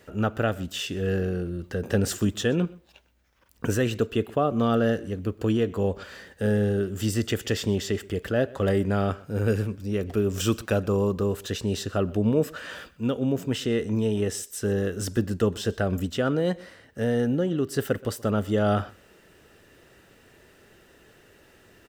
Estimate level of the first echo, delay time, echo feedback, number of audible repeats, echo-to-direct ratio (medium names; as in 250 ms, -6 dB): -23.0 dB, 125 ms, no regular repeats, 1, -23.0 dB